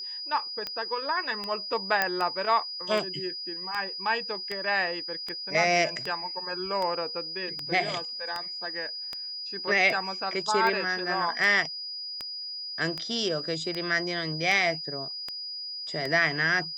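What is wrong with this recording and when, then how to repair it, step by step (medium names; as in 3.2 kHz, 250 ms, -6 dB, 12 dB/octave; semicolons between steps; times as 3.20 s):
tick 78 rpm -18 dBFS
whine 4.9 kHz -34 dBFS
2.02 s: pop -9 dBFS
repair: de-click; band-stop 4.9 kHz, Q 30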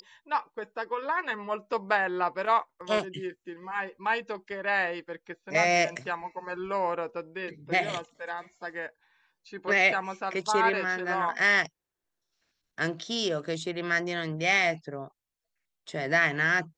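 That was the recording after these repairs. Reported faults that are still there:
nothing left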